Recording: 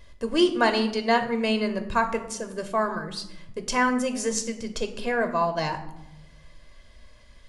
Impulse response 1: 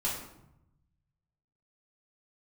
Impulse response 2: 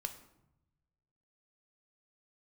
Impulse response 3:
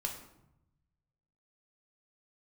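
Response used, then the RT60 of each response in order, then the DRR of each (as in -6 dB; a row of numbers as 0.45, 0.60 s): 2; 0.80, 0.85, 0.85 s; -7.5, 6.5, 1.0 dB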